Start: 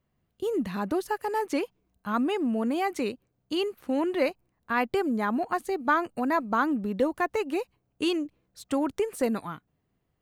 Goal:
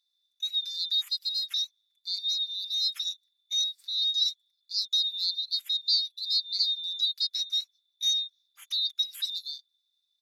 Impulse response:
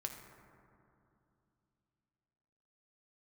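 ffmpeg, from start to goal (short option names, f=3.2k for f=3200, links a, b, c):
-filter_complex "[0:a]afftfilt=real='real(if(lt(b,736),b+184*(1-2*mod(floor(b/184),2)),b),0)':imag='imag(if(lt(b,736),b+184*(1-2*mod(floor(b/184),2)),b),0)':win_size=2048:overlap=0.75,acrossover=split=1400[a][b];[a]acrusher=bits=4:mix=0:aa=0.5[c];[c][b]amix=inputs=2:normalize=0,asetrate=38170,aresample=44100,atempo=1.15535,aecho=1:1:5.1:0.88,volume=-4.5dB"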